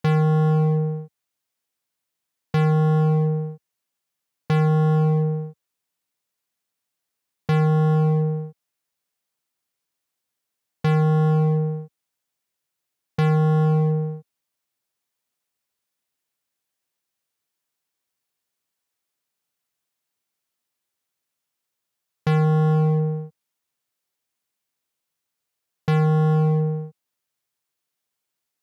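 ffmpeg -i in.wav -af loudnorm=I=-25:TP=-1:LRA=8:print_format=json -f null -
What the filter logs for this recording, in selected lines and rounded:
"input_i" : "-20.7",
"input_tp" : "-9.0",
"input_lra" : "5.0",
"input_thresh" : "-31.5",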